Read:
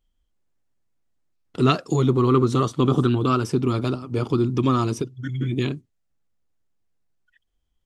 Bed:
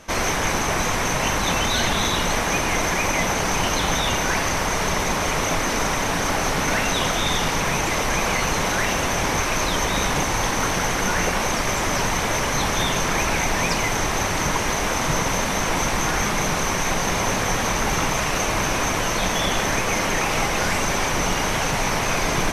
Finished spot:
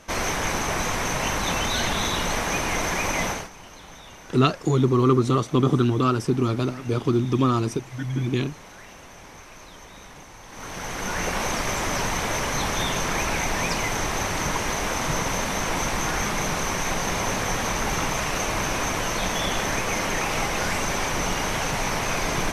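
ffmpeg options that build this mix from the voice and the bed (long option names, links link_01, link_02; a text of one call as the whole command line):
ffmpeg -i stem1.wav -i stem2.wav -filter_complex "[0:a]adelay=2750,volume=-0.5dB[link_01];[1:a]volume=15.5dB,afade=type=out:start_time=3.26:duration=0.23:silence=0.112202,afade=type=in:start_time=10.47:duration=0.95:silence=0.112202[link_02];[link_01][link_02]amix=inputs=2:normalize=0" out.wav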